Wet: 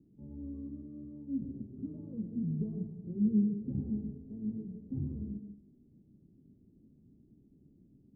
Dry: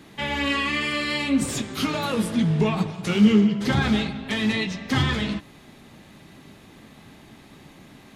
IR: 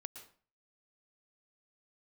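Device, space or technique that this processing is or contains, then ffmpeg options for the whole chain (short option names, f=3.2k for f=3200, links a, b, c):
next room: -filter_complex "[0:a]lowpass=f=330:w=0.5412,lowpass=f=330:w=1.3066[a];[1:a]atrim=start_sample=2205[b];[a][b]afir=irnorm=-1:irlink=0,volume=-8dB"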